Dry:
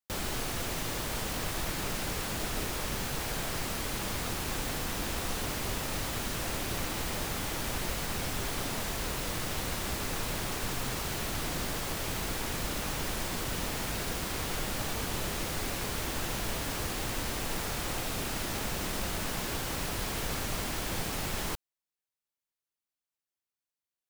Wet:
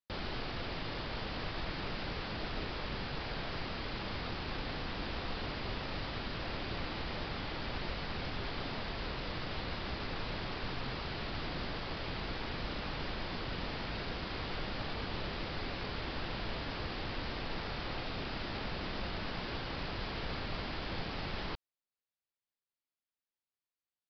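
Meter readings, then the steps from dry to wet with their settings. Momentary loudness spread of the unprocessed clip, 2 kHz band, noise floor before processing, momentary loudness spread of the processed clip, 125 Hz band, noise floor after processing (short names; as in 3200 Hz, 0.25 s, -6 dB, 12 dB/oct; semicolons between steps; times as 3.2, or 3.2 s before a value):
0 LU, -4.0 dB, under -85 dBFS, 0 LU, -4.0 dB, under -85 dBFS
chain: downsampling 11025 Hz; gain -4 dB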